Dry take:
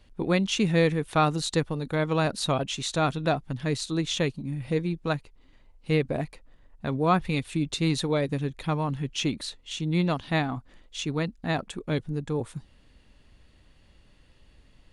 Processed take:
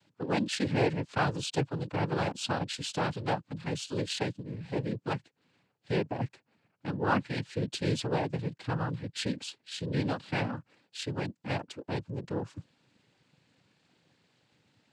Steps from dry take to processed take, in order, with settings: noise-vocoded speech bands 8; trim -5 dB

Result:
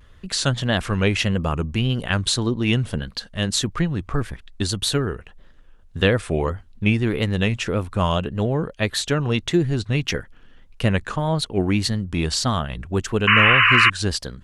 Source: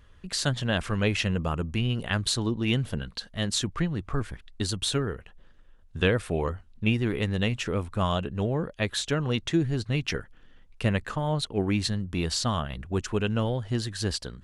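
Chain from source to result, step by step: vibrato 1.7 Hz 78 cents; painted sound noise, 13.27–13.90 s, 1–3 kHz -20 dBFS; trim +5.5 dB

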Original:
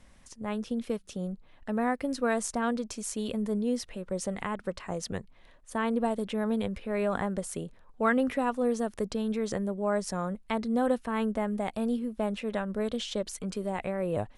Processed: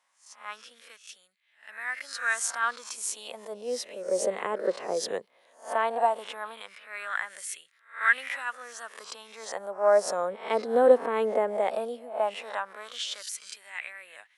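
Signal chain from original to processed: reverse spectral sustain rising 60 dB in 0.44 s; LFO high-pass sine 0.16 Hz 430–1900 Hz; three bands expanded up and down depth 40%

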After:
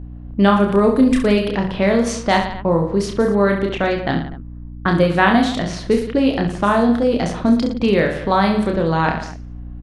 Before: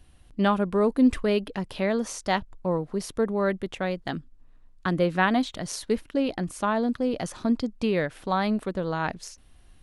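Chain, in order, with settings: reverse bouncing-ball echo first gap 30 ms, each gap 1.25×, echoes 5; level-controlled noise filter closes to 860 Hz, open at -19.5 dBFS; in parallel at +2 dB: compression, threshold -28 dBFS, peak gain reduction 12.5 dB; on the sum: hum 60 Hz, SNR 16 dB; trim +4 dB

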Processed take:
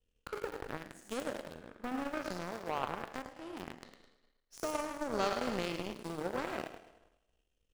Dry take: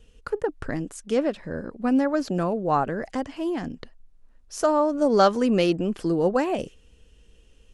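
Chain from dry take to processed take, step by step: spectral sustain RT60 1.00 s; in parallel at -9 dB: small samples zeroed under -19 dBFS; on the sum: compression 2:1, threshold -39 dBFS, peak gain reduction 16 dB; on a send: thinning echo 105 ms, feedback 57%, high-pass 410 Hz, level -4 dB; on the sum: power-law waveshaper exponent 2; de-esser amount 85%; trim +1 dB

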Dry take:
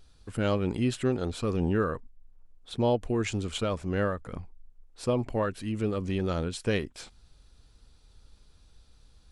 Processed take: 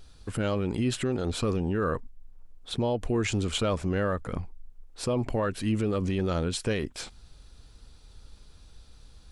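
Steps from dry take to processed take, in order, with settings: peak limiter -25 dBFS, peak gain reduction 9.5 dB; trim +6 dB

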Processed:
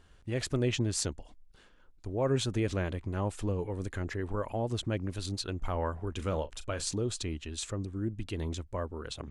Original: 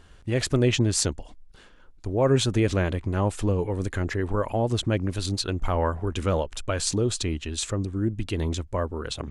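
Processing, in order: 6.15–6.88 s: doubling 38 ms -13.5 dB; trim -8 dB

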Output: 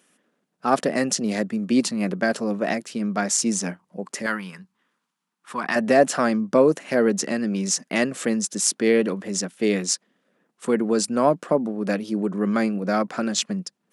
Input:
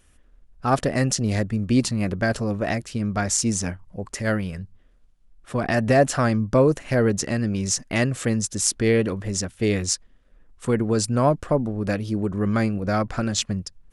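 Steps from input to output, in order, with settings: Chebyshev high-pass 180 Hz, order 4; 4.26–5.76 s: resonant low shelf 780 Hz -6.5 dB, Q 3; trim +1.5 dB

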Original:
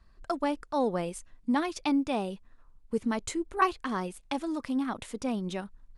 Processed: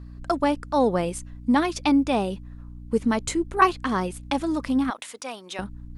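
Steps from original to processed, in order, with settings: hum 60 Hz, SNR 16 dB; 4.90–5.59 s: Bessel high-pass 930 Hz, order 2; trim +7 dB

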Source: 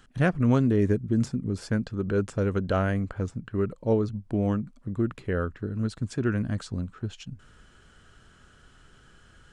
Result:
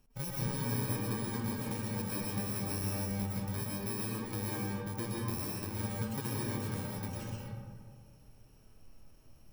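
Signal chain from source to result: bit-reversed sample order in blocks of 64 samples; compression, threshold -28 dBFS, peak gain reduction 11.5 dB; flange 0.27 Hz, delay 4.9 ms, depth 4.4 ms, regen -75%; algorithmic reverb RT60 2 s, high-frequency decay 0.4×, pre-delay 85 ms, DRR -5 dB; tape noise reduction on one side only decoder only; trim -4.5 dB

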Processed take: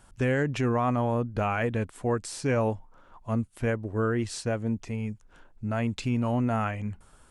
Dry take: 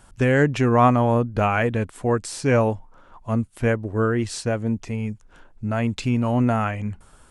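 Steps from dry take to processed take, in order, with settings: peak limiter -12.5 dBFS, peak gain reduction 7 dB; trim -5 dB

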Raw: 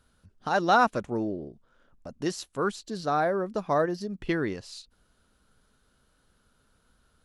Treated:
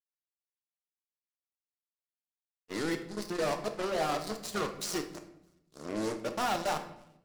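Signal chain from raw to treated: reverse the whole clip; high-pass 230 Hz 6 dB/octave; treble shelf 5 kHz +9 dB; band-stop 1.6 kHz, Q 6; in parallel at +2.5 dB: compression, threshold -34 dBFS, peak gain reduction 16.5 dB; on the sum: overload inside the chain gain 23 dB; on a send: thinning echo 304 ms, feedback 84%, high-pass 470 Hz, level -14 dB; on the sum: power-law waveshaper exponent 3; simulated room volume 230 m³, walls mixed, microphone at 0.52 m; spectral freeze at 1.32 s, 1.38 s

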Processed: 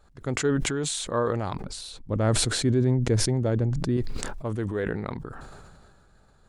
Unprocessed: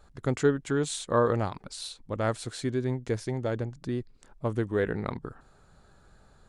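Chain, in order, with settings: 1.53–3.97 s: bass shelf 500 Hz +10.5 dB; decay stretcher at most 27 dB/s; trim -2.5 dB

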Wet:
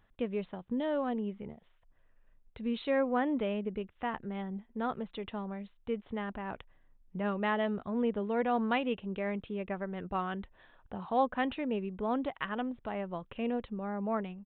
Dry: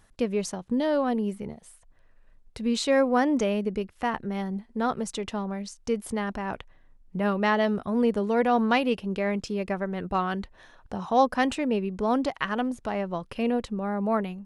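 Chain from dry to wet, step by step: resampled via 8 kHz; trim -7.5 dB

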